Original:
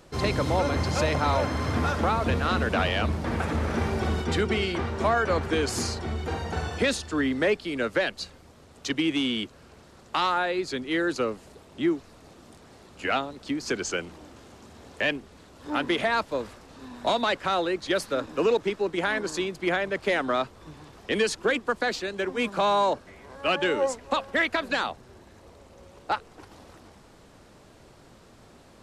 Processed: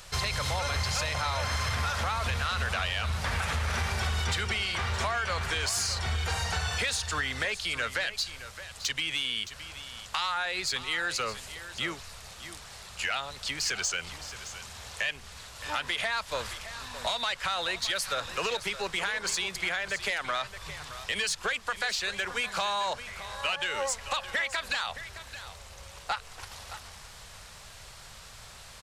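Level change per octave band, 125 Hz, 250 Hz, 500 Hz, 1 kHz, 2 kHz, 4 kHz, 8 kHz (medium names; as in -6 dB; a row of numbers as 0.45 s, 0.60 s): -3.5 dB, -17.0 dB, -11.5 dB, -5.0 dB, -1.0 dB, +2.5 dB, +5.5 dB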